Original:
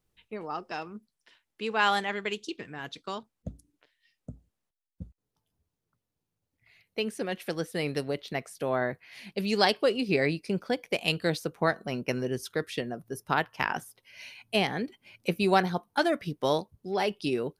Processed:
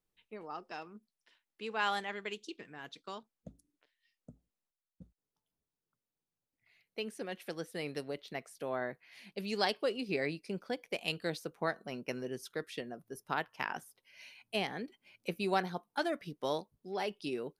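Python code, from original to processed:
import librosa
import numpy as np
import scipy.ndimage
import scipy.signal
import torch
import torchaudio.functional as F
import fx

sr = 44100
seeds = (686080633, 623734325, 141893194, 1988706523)

y = fx.peak_eq(x, sr, hz=80.0, db=-14.5, octaves=1.0)
y = F.gain(torch.from_numpy(y), -8.0).numpy()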